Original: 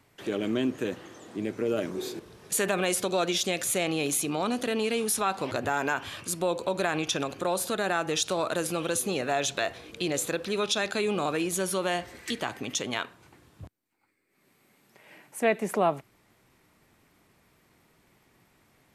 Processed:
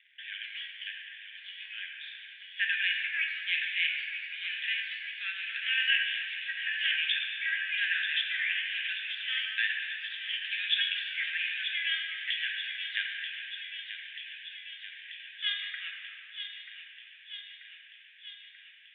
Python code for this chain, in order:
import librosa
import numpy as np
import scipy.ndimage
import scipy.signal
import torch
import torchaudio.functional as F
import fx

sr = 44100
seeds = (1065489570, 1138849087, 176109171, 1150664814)

p1 = fx.pitch_trill(x, sr, semitones=10.5, every_ms=432)
p2 = fx.dmg_crackle(p1, sr, seeds[0], per_s=110.0, level_db=-43.0)
p3 = scipy.signal.sosfilt(scipy.signal.cheby1(5, 1.0, [1600.0, 3500.0], 'bandpass', fs=sr, output='sos'), p2)
p4 = p3 + fx.echo_wet_highpass(p3, sr, ms=936, feedback_pct=68, hz=2000.0, wet_db=-7.5, dry=0)
p5 = fx.room_shoebox(p4, sr, seeds[1], volume_m3=140.0, walls='hard', distance_m=0.41)
y = F.gain(torch.from_numpy(p5), 4.0).numpy()